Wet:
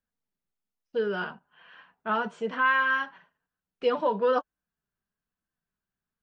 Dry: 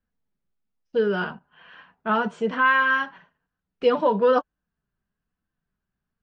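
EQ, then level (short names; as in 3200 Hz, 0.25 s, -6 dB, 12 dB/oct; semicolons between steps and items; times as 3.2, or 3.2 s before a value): low shelf 260 Hz -7 dB; -4.0 dB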